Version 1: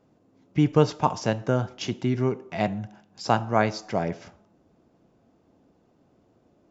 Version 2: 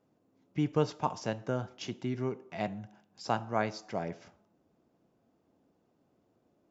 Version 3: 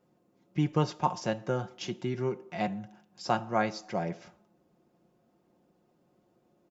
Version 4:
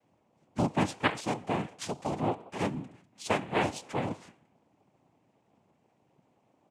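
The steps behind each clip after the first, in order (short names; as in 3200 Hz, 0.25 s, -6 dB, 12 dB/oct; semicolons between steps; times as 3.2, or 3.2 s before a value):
low shelf 72 Hz -8.5 dB; gain -8.5 dB
comb 5.6 ms, depth 49%; gain +2 dB
noise vocoder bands 4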